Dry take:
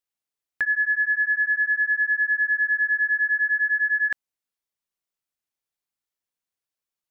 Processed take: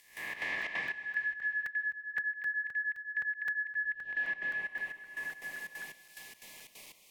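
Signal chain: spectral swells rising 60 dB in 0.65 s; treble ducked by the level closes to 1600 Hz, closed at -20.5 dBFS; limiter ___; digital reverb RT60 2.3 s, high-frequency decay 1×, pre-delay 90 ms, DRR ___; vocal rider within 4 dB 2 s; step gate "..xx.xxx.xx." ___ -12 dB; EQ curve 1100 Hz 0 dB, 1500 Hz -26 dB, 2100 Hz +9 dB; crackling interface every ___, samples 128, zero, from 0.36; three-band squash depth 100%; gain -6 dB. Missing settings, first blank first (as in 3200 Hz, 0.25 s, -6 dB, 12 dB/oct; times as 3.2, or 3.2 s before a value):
-21.5 dBFS, -9 dB, 180 bpm, 0.26 s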